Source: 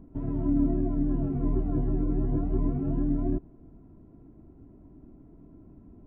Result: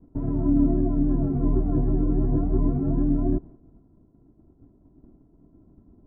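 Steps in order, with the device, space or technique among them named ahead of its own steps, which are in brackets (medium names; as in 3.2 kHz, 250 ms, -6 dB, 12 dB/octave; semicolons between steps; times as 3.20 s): hearing-loss simulation (low-pass 1.5 kHz 12 dB/octave; expander -43 dBFS); trim +4.5 dB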